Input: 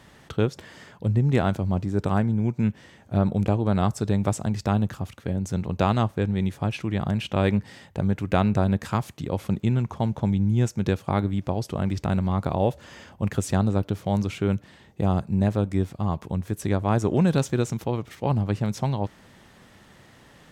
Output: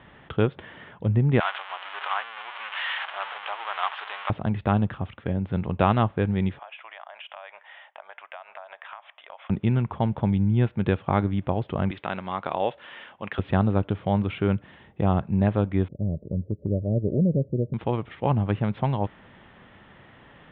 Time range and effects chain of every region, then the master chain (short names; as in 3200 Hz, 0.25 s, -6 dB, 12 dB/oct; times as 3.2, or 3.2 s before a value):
1.4–4.3 zero-crossing step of -23 dBFS + HPF 910 Hz 24 dB/oct + bell 3000 Hz +3.5 dB 0.27 oct
6.59–9.5 Chebyshev band-pass 620–3500 Hz, order 4 + compressor 10:1, threshold -39 dBFS
11.91–13.39 HPF 330 Hz 6 dB/oct + tilt +2.5 dB/oct
15.88–17.74 Chebyshev low-pass 600 Hz, order 6 + dynamic EQ 350 Hz, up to -4 dB, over -32 dBFS, Q 1.1
whole clip: steep low-pass 3500 Hz 72 dB/oct; bell 1200 Hz +3 dB 2.1 oct